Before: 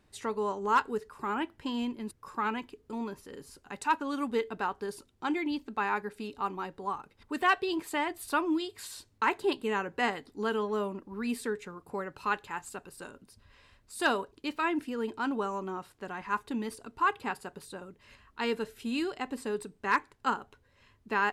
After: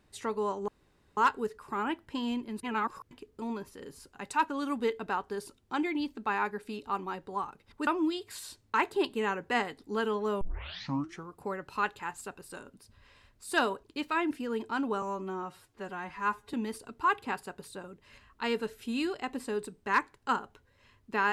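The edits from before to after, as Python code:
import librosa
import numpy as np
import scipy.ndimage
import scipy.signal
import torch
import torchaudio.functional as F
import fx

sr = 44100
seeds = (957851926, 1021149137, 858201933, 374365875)

y = fx.edit(x, sr, fx.insert_room_tone(at_s=0.68, length_s=0.49),
    fx.reverse_span(start_s=2.14, length_s=0.48),
    fx.cut(start_s=7.38, length_s=0.97),
    fx.tape_start(start_s=10.89, length_s=0.87),
    fx.stretch_span(start_s=15.5, length_s=1.01, factor=1.5), tone=tone)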